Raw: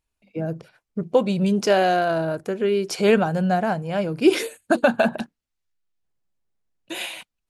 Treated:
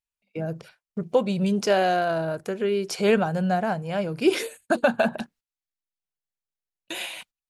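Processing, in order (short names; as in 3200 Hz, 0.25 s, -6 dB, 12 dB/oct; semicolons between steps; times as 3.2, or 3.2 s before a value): bell 300 Hz -4 dB 0.41 oct; gate -49 dBFS, range -17 dB; mismatched tape noise reduction encoder only; gain -2.5 dB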